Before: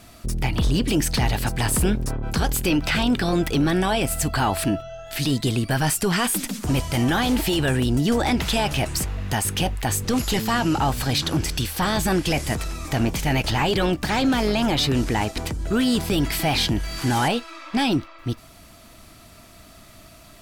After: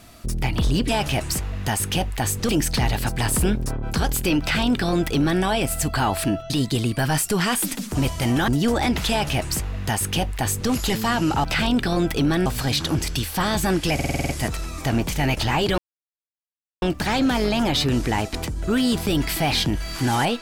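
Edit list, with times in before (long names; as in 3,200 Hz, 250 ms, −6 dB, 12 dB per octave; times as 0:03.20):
0:02.80–0:03.82: duplicate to 0:10.88
0:04.90–0:05.22: remove
0:07.20–0:07.92: remove
0:08.54–0:10.14: duplicate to 0:00.89
0:12.36: stutter 0.05 s, 8 plays
0:13.85: splice in silence 1.04 s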